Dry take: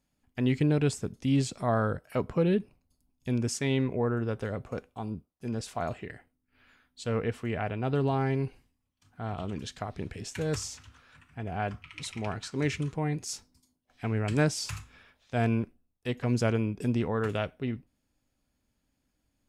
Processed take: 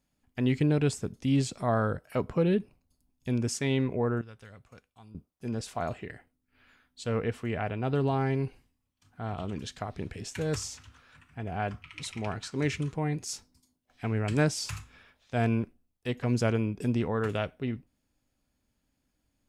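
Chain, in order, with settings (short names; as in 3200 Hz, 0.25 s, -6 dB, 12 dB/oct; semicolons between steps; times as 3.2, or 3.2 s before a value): 4.21–5.15 passive tone stack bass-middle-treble 5-5-5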